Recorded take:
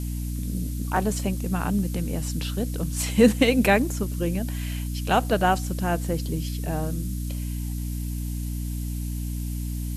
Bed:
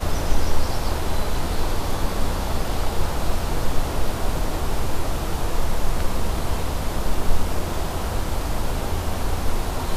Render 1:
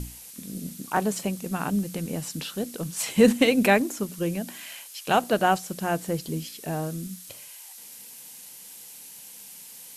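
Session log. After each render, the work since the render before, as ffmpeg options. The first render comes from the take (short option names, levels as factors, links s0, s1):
-af "bandreject=f=60:t=h:w=6,bandreject=f=120:t=h:w=6,bandreject=f=180:t=h:w=6,bandreject=f=240:t=h:w=6,bandreject=f=300:t=h:w=6"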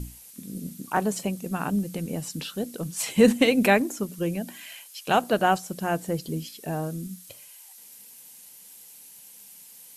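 -af "afftdn=nr=6:nf=-45"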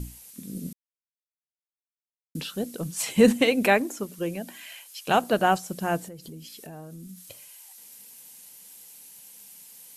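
-filter_complex "[0:a]asettb=1/sr,asplit=3[s0][s1][s2];[s0]atrim=end=3.414[s3];[s1]atrim=start=3.41:end=4.88,asetpts=PTS-STARTPTS,afade=t=in:d=0.004:c=qsin,afade=t=out:st=1.466:d=0.004:c=qsin,bass=f=250:g=-7,treble=f=4000:g=-2[s4];[s2]atrim=start=4.876[s5];[s3][s4]acrossfade=d=0.004:c1=hsin:c2=qsin[s6];[s6][s5]acrossfade=d=0.004:c1=qsin:c2=hsin,asettb=1/sr,asplit=3[s7][s8][s9];[s7]atrim=end=6.054[s10];[s8]atrim=start=6.05:end=7.2,asetpts=PTS-STARTPTS,afade=t=in:d=0.004:c=qsin,afade=t=out:st=1.146:d=0.004:c=qsin,acompressor=threshold=0.0112:ratio=6:attack=3.2:release=140:knee=1:detection=peak[s11];[s9]atrim=start=7.196[s12];[s10][s11]acrossfade=d=0.004:c1=hsin:c2=qsin[s13];[s13][s12]acrossfade=d=0.004:c1=qsin:c2=hsin,asplit=3[s14][s15][s16];[s14]atrim=end=0.73,asetpts=PTS-STARTPTS,afade=t=out:st=0.726:d=0.004:c=hsin[s17];[s15]atrim=start=0.73:end=2.35,asetpts=PTS-STARTPTS,volume=0[s18];[s16]atrim=start=2.35,asetpts=PTS-STARTPTS,afade=t=in:d=0.004:c=hsin[s19];[s17][s18][s19]concat=n=3:v=0:a=1"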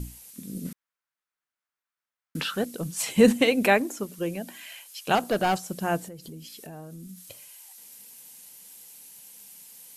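-filter_complex "[0:a]asettb=1/sr,asplit=3[s0][s1][s2];[s0]atrim=end=0.654[s3];[s1]atrim=start=0.65:end=2.65,asetpts=PTS-STARTPTS,afade=t=in:d=0.004:c=qsin,afade=t=out:st=1.996:d=0.004:c=qsin,equalizer=f=1400:w=0.79:g=14.5[s4];[s2]atrim=start=2.646[s5];[s3][s4]acrossfade=d=0.004:c1=hsin:c2=qsin[s6];[s6][s5]acrossfade=d=0.004:c1=qsin:c2=hsin,asettb=1/sr,asplit=3[s7][s8][s9];[s7]atrim=end=5.154[s10];[s8]atrim=start=5.15:end=5.68,asetpts=PTS-STARTPTS,afade=t=in:d=0.004:c=qsin,afade=t=out:st=0.526:d=0.004:c=qsin,asoftclip=type=hard:threshold=0.112[s11];[s9]atrim=start=5.676[s12];[s10][s11]acrossfade=d=0.004:c1=hsin:c2=qsin[s13];[s13][s12]acrossfade=d=0.004:c1=qsin:c2=hsin"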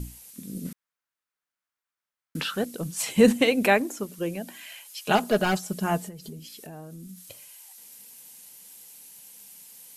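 -filter_complex "[0:a]asettb=1/sr,asplit=3[s0][s1][s2];[s0]atrim=end=4.844[s3];[s1]atrim=start=4.84:end=6.39,asetpts=PTS-STARTPTS,afade=t=in:d=0.004:c=qsin,afade=t=out:st=1.546:d=0.004:c=qsin,aecho=1:1:4.8:0.65,atrim=end_sample=68355[s4];[s2]atrim=start=6.386[s5];[s3][s4]acrossfade=d=0.004:c1=hsin:c2=qsin[s6];[s6][s5]acrossfade=d=0.004:c1=qsin:c2=hsin"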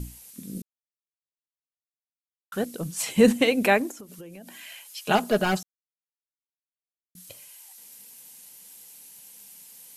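-filter_complex "[0:a]asettb=1/sr,asplit=3[s0][s1][s2];[s0]atrim=end=3.914[s3];[s1]atrim=start=3.91:end=4.58,asetpts=PTS-STARTPTS,afade=t=in:d=0.004:c=qsin,afade=t=out:st=0.666:d=0.004:c=qsin,acompressor=threshold=0.0112:ratio=16:attack=3.2:release=140:knee=1:detection=peak[s4];[s2]atrim=start=4.576[s5];[s3][s4]acrossfade=d=0.004:c1=hsin:c2=qsin[s6];[s6][s5]acrossfade=d=0.004:c1=qsin:c2=hsin,asplit=5[s7][s8][s9][s10][s11];[s7]atrim=end=0.62,asetpts=PTS-STARTPTS,afade=t=out:st=0.616:d=0.004:c=hsin[s12];[s8]atrim=start=0.62:end=2.52,asetpts=PTS-STARTPTS,volume=0[s13];[s9]atrim=start=2.52:end=5.63,asetpts=PTS-STARTPTS,afade=t=in:d=0.004:c=hsin,afade=t=out:st=3.106:d=0.004:c=hsin[s14];[s10]atrim=start=5.63:end=7.15,asetpts=PTS-STARTPTS,volume=0[s15];[s11]atrim=start=7.15,asetpts=PTS-STARTPTS,afade=t=in:d=0.004:c=hsin[s16];[s12][s13][s14][s15][s16]concat=n=5:v=0:a=1"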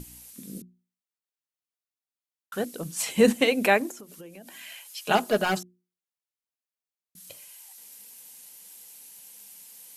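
-af "lowshelf=f=140:g=-9,bandreject=f=60:t=h:w=6,bandreject=f=120:t=h:w=6,bandreject=f=180:t=h:w=6,bandreject=f=240:t=h:w=6,bandreject=f=300:t=h:w=6,bandreject=f=360:t=h:w=6"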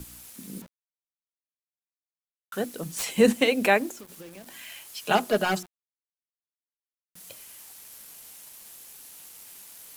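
-filter_complex "[0:a]acrossover=split=120|1500|6300[s0][s1][s2][s3];[s3]aeval=exprs='(mod(21.1*val(0)+1,2)-1)/21.1':c=same[s4];[s0][s1][s2][s4]amix=inputs=4:normalize=0,acrusher=bits=7:mix=0:aa=0.000001"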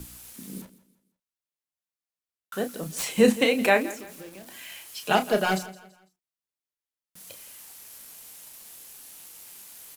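-filter_complex "[0:a]asplit=2[s0][s1];[s1]adelay=32,volume=0.355[s2];[s0][s2]amix=inputs=2:normalize=0,aecho=1:1:167|334|501:0.126|0.0453|0.0163"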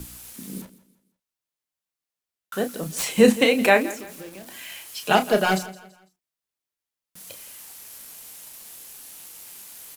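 -af "volume=1.5"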